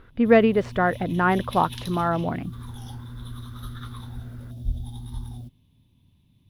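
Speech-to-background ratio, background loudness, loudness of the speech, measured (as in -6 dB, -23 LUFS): 15.0 dB, -37.5 LUFS, -22.5 LUFS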